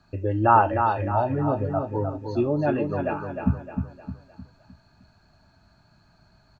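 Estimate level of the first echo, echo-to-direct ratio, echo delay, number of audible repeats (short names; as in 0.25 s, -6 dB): -6.0 dB, -5.0 dB, 0.307 s, 4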